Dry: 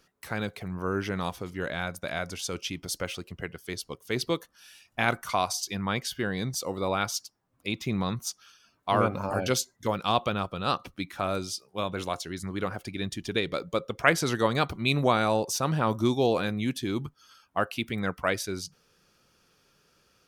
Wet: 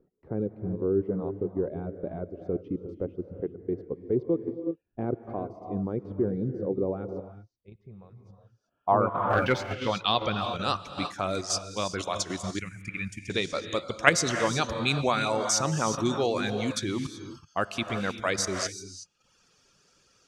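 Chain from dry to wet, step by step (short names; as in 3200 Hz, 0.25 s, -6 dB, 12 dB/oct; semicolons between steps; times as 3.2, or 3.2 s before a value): reverb removal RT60 1.2 s; 7.21–8.2 passive tone stack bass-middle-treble 10-0-10; non-linear reverb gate 0.4 s rising, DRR 8 dB; in parallel at +3 dB: level quantiser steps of 18 dB; on the sum: low-pass sweep 400 Hz -> 7200 Hz, 8.37–10.53; 9.3–9.73 sample leveller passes 1; 12.59–13.3 EQ curve 170 Hz 0 dB, 790 Hz -29 dB, 2400 Hz +8 dB, 3500 Hz -19 dB, 11000 Hz -1 dB; gain -4 dB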